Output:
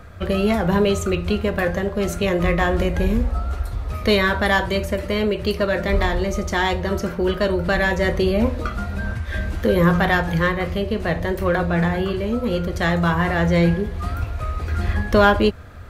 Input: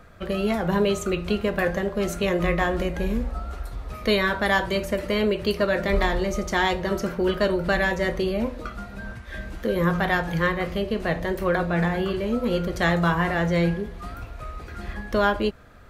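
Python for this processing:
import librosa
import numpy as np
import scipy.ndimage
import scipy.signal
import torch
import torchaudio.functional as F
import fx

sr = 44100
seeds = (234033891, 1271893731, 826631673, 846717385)

p1 = fx.peak_eq(x, sr, hz=84.0, db=13.0, octaves=0.57)
p2 = np.clip(p1, -10.0 ** (-18.0 / 20.0), 10.0 ** (-18.0 / 20.0))
p3 = p1 + (p2 * 10.0 ** (-8.5 / 20.0))
y = fx.rider(p3, sr, range_db=10, speed_s=2.0)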